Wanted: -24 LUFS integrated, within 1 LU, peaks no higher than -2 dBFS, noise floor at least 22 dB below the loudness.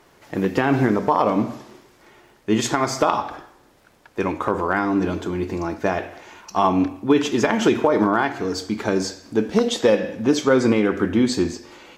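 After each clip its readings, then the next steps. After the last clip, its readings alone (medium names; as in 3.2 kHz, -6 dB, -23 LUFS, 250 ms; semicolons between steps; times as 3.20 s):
tick rate 27 per s; loudness -21.0 LUFS; peak level -3.5 dBFS; loudness target -24.0 LUFS
-> de-click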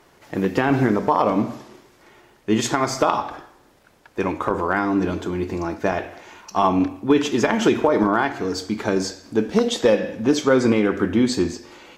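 tick rate 0 per s; loudness -21.0 LUFS; peak level -3.5 dBFS; loudness target -24.0 LUFS
-> trim -3 dB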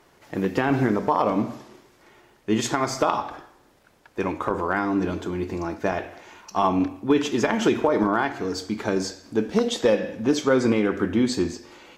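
loudness -24.0 LUFS; peak level -6.5 dBFS; noise floor -58 dBFS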